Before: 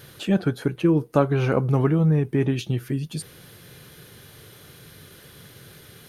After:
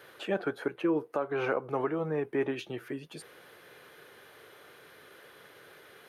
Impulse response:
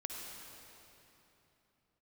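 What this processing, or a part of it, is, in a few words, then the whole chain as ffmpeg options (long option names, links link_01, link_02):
DJ mixer with the lows and highs turned down: -filter_complex "[0:a]acrossover=split=360 2500:gain=0.0631 1 0.2[link_01][link_02][link_03];[link_01][link_02][link_03]amix=inputs=3:normalize=0,alimiter=limit=-19dB:level=0:latency=1:release=206"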